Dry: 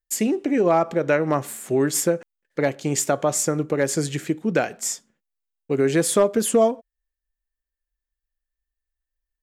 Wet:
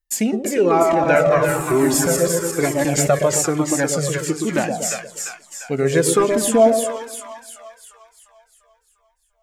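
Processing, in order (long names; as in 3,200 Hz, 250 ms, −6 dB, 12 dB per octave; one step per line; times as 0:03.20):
0:00.70–0:03.07: feedback delay that plays each chunk backwards 113 ms, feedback 56%, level −3.5 dB
echo with a time of its own for lows and highs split 870 Hz, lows 119 ms, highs 348 ms, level −5 dB
flanger whose copies keep moving one way falling 1.1 Hz
level +7 dB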